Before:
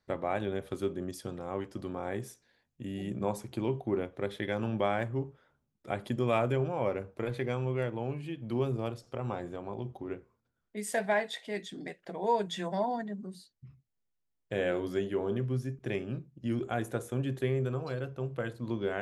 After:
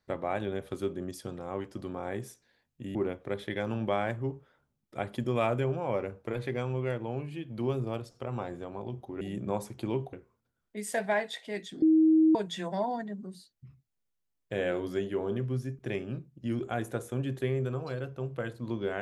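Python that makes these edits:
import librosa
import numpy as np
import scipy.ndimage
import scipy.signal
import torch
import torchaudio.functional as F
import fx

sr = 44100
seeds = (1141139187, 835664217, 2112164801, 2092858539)

y = fx.edit(x, sr, fx.move(start_s=2.95, length_s=0.92, to_s=10.13),
    fx.bleep(start_s=11.82, length_s=0.53, hz=317.0, db=-18.0), tone=tone)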